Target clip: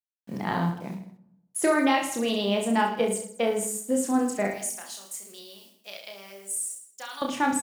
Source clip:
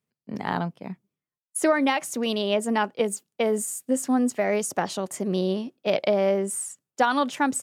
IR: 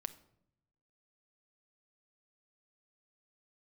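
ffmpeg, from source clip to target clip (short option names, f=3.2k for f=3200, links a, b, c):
-filter_complex "[0:a]equalizer=f=67:w=1.3:g=7.5,acrusher=bits=8:mix=0:aa=0.000001,asettb=1/sr,asplit=3[a][b][c];[a]atrim=end=4.474[d];[b]atrim=start=4.47:end=7.22,asetpts=PTS-STARTPTS,afade=t=in:d=0.004:c=qsin,afade=t=out:st=2.746:d=0.004:c=qsin,aderivative[e];[c]atrim=start=7.216[f];[d][e]acrossfade=d=0.004:c1=hsin:c2=qsin[g];[g][f]acrossfade=d=0.004:c1=qsin:c2=hsin,aecho=1:1:30|66|109.2|161|223.2:0.631|0.398|0.251|0.158|0.1[h];[1:a]atrim=start_sample=2205[i];[h][i]afir=irnorm=-1:irlink=0"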